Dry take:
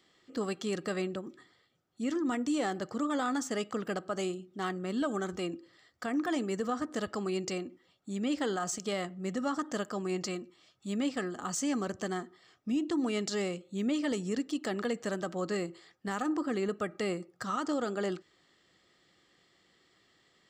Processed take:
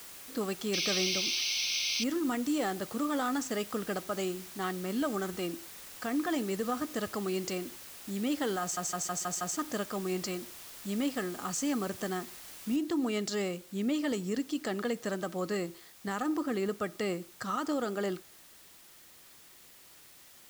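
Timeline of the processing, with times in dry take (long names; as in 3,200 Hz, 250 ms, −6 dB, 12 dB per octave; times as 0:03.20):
0:00.73–0:02.04: sound drawn into the spectrogram noise 2,100–6,300 Hz −32 dBFS
0:08.61: stutter in place 0.16 s, 6 plays
0:12.76: noise floor change −48 dB −56 dB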